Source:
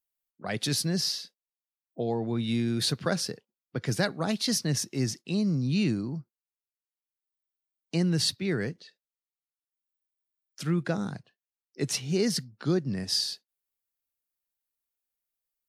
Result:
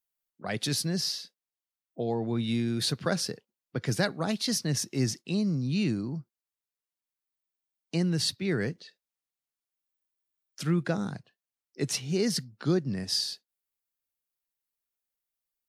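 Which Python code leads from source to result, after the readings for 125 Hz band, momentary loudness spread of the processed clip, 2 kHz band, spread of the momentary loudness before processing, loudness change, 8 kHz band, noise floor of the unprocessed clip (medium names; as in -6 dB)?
-0.5 dB, 9 LU, -0.5 dB, 11 LU, -1.0 dB, -1.0 dB, under -85 dBFS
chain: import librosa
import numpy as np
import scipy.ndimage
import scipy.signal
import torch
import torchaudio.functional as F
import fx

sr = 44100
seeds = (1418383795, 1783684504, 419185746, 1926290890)

y = fx.rider(x, sr, range_db=3, speed_s=0.5)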